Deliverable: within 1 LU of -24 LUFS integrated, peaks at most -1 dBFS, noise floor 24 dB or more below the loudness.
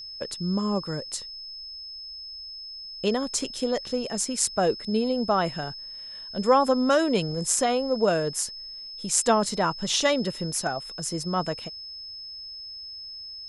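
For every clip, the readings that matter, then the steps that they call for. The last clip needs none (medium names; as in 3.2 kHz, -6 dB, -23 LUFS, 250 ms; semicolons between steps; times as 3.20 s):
steady tone 5.2 kHz; tone level -37 dBFS; loudness -27.0 LUFS; peak level -4.5 dBFS; loudness target -24.0 LUFS
-> band-stop 5.2 kHz, Q 30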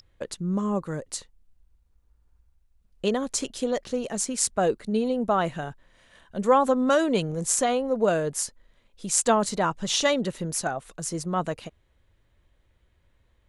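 steady tone not found; loudness -25.5 LUFS; peak level -5.0 dBFS; loudness target -24.0 LUFS
-> trim +1.5 dB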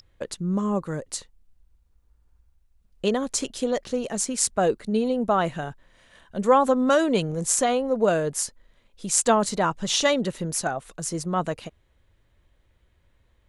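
loudness -24.0 LUFS; peak level -3.5 dBFS; noise floor -64 dBFS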